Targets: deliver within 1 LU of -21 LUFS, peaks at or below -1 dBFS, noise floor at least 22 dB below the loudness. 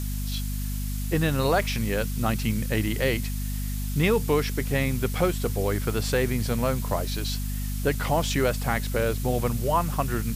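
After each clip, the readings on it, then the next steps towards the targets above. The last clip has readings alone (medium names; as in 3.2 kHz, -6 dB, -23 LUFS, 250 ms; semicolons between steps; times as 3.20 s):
hum 50 Hz; highest harmonic 250 Hz; hum level -27 dBFS; noise floor -29 dBFS; noise floor target -49 dBFS; loudness -26.5 LUFS; peak level -10.0 dBFS; loudness target -21.0 LUFS
-> de-hum 50 Hz, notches 5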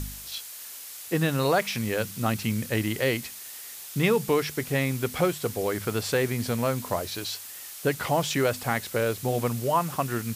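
hum not found; noise floor -41 dBFS; noise floor target -49 dBFS
-> noise print and reduce 8 dB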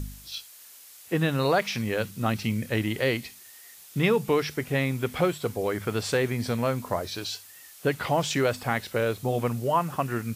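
noise floor -49 dBFS; noise floor target -50 dBFS
-> noise print and reduce 6 dB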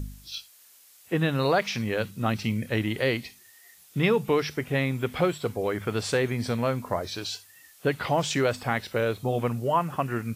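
noise floor -55 dBFS; loudness -27.5 LUFS; peak level -11.5 dBFS; loudness target -21.0 LUFS
-> trim +6.5 dB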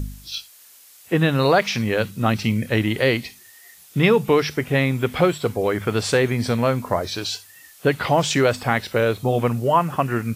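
loudness -21.0 LUFS; peak level -5.0 dBFS; noise floor -49 dBFS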